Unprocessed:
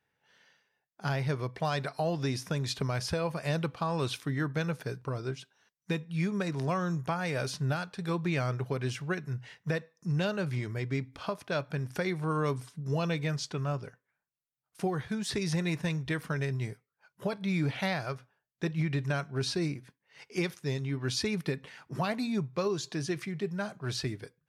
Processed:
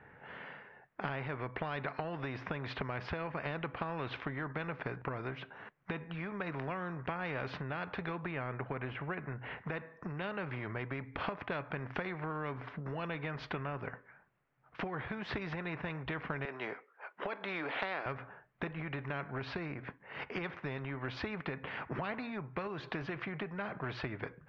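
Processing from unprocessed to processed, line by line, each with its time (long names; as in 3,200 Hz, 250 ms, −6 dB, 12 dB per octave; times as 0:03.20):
0:08.31–0:09.58: high-frequency loss of the air 260 metres
0:16.45–0:18.06: high-pass filter 360 Hz 24 dB per octave
whole clip: inverse Chebyshev low-pass filter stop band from 9,900 Hz, stop band 80 dB; downward compressor 10 to 1, threshold −41 dBFS; every bin compressed towards the loudest bin 2 to 1; level +8.5 dB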